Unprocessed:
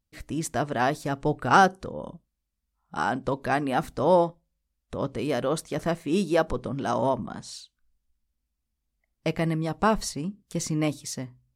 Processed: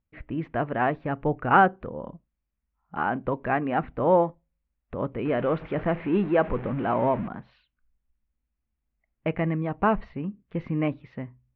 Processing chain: 5.25–7.28 zero-crossing step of -32.5 dBFS; steep low-pass 2600 Hz 36 dB/oct

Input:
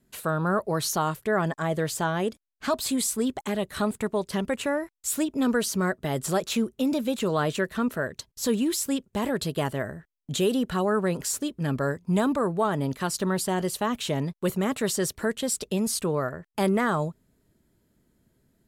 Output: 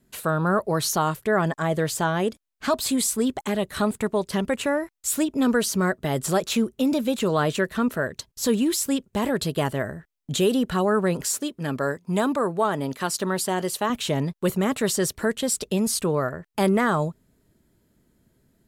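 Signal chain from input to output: 11.27–13.9 HPF 260 Hz 6 dB/oct; gain +3 dB

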